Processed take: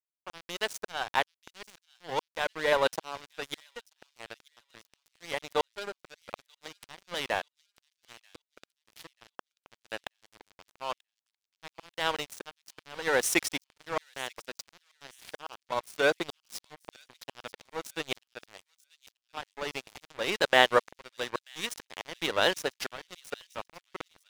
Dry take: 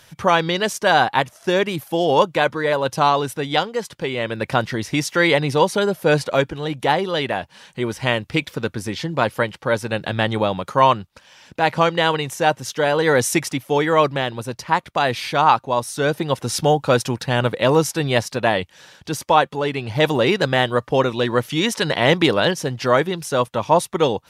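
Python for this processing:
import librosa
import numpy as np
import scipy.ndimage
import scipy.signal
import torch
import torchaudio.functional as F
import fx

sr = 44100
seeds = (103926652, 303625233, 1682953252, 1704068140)

p1 = scipy.signal.sosfilt(scipy.signal.butter(2, 440.0, 'highpass', fs=sr, output='sos'), x)
p2 = fx.auto_swell(p1, sr, attack_ms=630.0)
p3 = np.sign(p2) * np.maximum(np.abs(p2) - 10.0 ** (-30.5 / 20.0), 0.0)
y = p3 + fx.echo_wet_highpass(p3, sr, ms=936, feedback_pct=31, hz=3600.0, wet_db=-19, dry=0)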